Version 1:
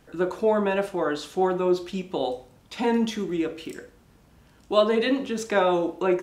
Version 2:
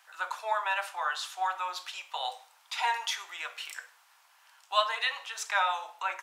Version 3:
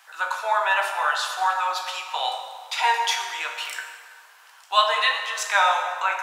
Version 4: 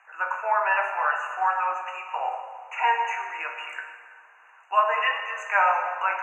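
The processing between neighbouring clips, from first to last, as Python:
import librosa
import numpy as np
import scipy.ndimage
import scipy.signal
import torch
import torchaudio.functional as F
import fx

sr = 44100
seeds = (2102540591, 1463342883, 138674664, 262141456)

y1 = scipy.signal.sosfilt(scipy.signal.butter(6, 830.0, 'highpass', fs=sr, output='sos'), x)
y1 = fx.rider(y1, sr, range_db=4, speed_s=2.0)
y2 = fx.doubler(y1, sr, ms=15.0, db=-11)
y2 = fx.rev_plate(y2, sr, seeds[0], rt60_s=2.0, hf_ratio=0.65, predelay_ms=0, drr_db=3.5)
y2 = F.gain(torch.from_numpy(y2), 7.0).numpy()
y3 = fx.brickwall_bandstop(y2, sr, low_hz=2900.0, high_hz=6100.0)
y3 = fx.air_absorb(y3, sr, metres=220.0)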